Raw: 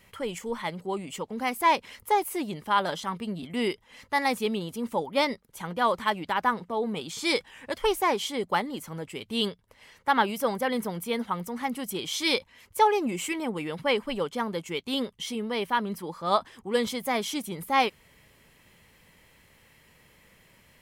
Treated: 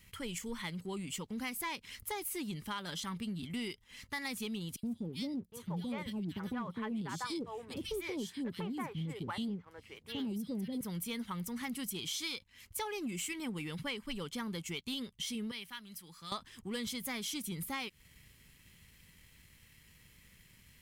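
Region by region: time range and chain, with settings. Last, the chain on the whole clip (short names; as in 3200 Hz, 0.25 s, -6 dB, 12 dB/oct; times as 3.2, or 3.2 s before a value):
4.76–10.81 HPF 87 Hz + tilt shelf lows +7.5 dB, about 1100 Hz + three bands offset in time highs, lows, mids 70/760 ms, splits 520/2800 Hz
15.51–16.32 passive tone stack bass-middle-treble 5-5-5 + three-band squash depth 70%
whole clip: passive tone stack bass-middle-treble 6-0-2; compressor, threshold -51 dBFS; sample leveller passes 1; gain +12 dB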